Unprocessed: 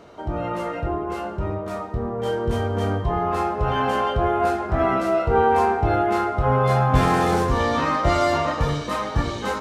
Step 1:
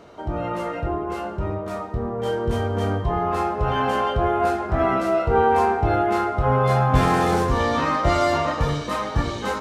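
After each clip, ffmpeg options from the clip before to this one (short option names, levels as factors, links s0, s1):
-af anull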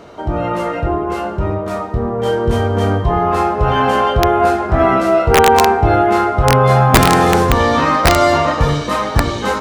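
-af "aeval=exprs='(mod(2.82*val(0)+1,2)-1)/2.82':c=same,volume=2.51"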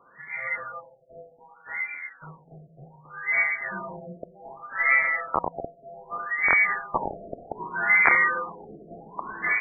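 -af "lowpass=f=2800:t=q:w=0.5098,lowpass=f=2800:t=q:w=0.6013,lowpass=f=2800:t=q:w=0.9,lowpass=f=2800:t=q:w=2.563,afreqshift=-3300,afftfilt=real='re*lt(b*sr/1024,710*pow(2400/710,0.5+0.5*sin(2*PI*0.65*pts/sr)))':imag='im*lt(b*sr/1024,710*pow(2400/710,0.5+0.5*sin(2*PI*0.65*pts/sr)))':win_size=1024:overlap=0.75,volume=0.841"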